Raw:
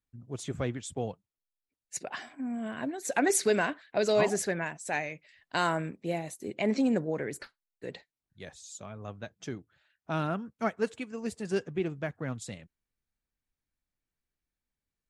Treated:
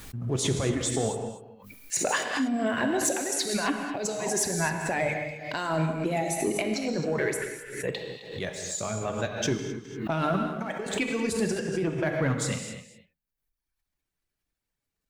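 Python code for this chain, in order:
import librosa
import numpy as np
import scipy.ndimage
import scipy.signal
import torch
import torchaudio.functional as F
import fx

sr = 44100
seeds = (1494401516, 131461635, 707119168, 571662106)

y = fx.riaa(x, sr, side='playback', at=(4.45, 5.09))
y = fx.hum_notches(y, sr, base_hz=50, count=5)
y = fx.dereverb_blind(y, sr, rt60_s=1.3)
y = fx.peak_eq(y, sr, hz=940.0, db=13.0, octaves=1.5, at=(10.46, 11.13))
y = fx.over_compress(y, sr, threshold_db=-35.0, ratio=-1.0)
y = fx.leveller(y, sr, passes=1)
y = fx.fixed_phaser(y, sr, hz=1200.0, stages=6, at=(7.33, 7.87), fade=0.02)
y = y + 10.0 ** (-14.5 / 20.0) * np.pad(y, (int(262 * sr / 1000.0), 0))[:len(y)]
y = fx.rev_gated(y, sr, seeds[0], gate_ms=260, shape='flat', drr_db=3.5)
y = fx.pre_swell(y, sr, db_per_s=74.0)
y = y * 10.0 ** (3.0 / 20.0)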